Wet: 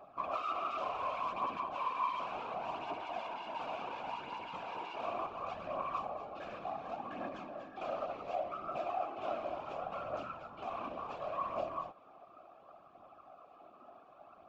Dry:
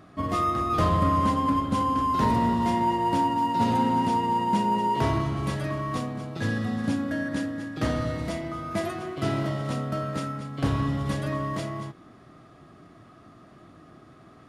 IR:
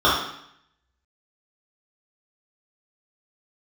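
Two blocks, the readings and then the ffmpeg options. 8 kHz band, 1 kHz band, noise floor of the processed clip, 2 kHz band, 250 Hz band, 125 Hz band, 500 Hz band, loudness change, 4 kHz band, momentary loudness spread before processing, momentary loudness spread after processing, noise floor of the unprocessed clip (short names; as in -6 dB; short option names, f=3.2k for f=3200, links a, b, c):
under -20 dB, -12.0 dB, -60 dBFS, -12.0 dB, -25.0 dB, -30.5 dB, -8.5 dB, -13.5 dB, -12.5 dB, 9 LU, 21 LU, -52 dBFS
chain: -filter_complex "[0:a]aresample=16000,asoftclip=type=hard:threshold=-30.5dB,aresample=44100,asplit=3[a][b][c];[a]bandpass=f=730:t=q:w=8,volume=0dB[d];[b]bandpass=f=1.09k:t=q:w=8,volume=-6dB[e];[c]bandpass=f=2.44k:t=q:w=8,volume=-9dB[f];[d][e][f]amix=inputs=3:normalize=0,aphaser=in_gain=1:out_gain=1:delay=3.5:decay=0.41:speed=0.69:type=triangular,afftfilt=real='hypot(re,im)*cos(2*PI*random(0))':imag='hypot(re,im)*sin(2*PI*random(1))':win_size=512:overlap=0.75,volume=10.5dB"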